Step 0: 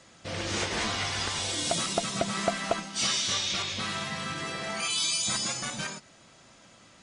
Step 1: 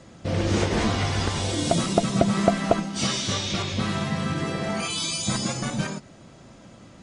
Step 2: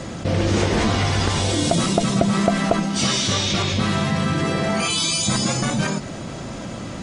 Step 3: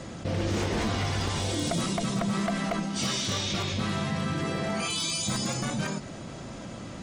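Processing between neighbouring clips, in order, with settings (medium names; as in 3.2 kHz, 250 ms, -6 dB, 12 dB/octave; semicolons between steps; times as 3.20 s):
tilt shelf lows +7.5 dB, about 730 Hz; trim +6.5 dB
level flattener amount 50%
wavefolder -12 dBFS; trim -8.5 dB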